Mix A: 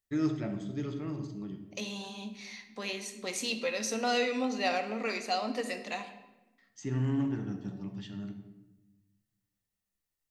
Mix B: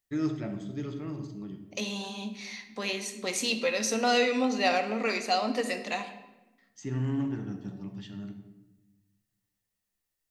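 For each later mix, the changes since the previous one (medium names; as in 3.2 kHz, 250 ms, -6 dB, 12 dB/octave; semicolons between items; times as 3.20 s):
second voice +4.5 dB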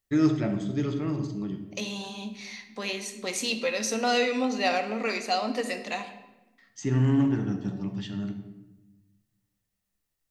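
first voice +7.5 dB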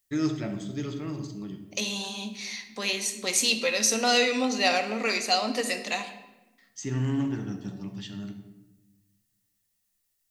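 first voice -5.0 dB; master: add treble shelf 3.1 kHz +10 dB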